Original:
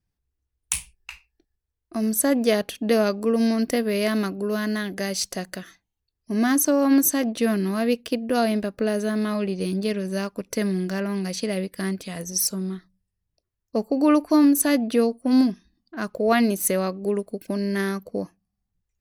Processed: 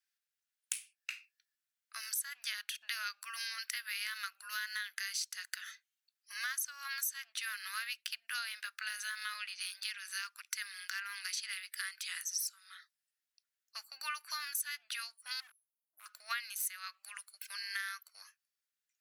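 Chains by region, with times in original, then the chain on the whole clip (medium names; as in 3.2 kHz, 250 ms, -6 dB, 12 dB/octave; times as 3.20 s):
15.40–16.06 s: Chebyshev band-stop 570–10000 Hz, order 4 + compression 10:1, threshold -23 dBFS + overload inside the chain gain 26.5 dB
whole clip: elliptic high-pass 1.4 kHz, stop band 70 dB; compression 5:1, threshold -39 dBFS; trim +2.5 dB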